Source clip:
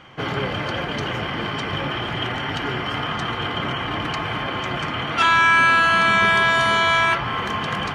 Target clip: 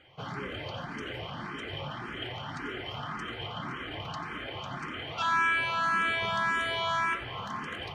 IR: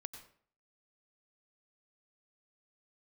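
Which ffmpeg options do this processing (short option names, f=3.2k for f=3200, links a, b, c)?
-filter_complex "[1:a]atrim=start_sample=2205,atrim=end_sample=4410[a];[0:a][a]afir=irnorm=-1:irlink=0,asplit=2[b][c];[c]afreqshift=1.8[d];[b][d]amix=inputs=2:normalize=1,volume=-5.5dB"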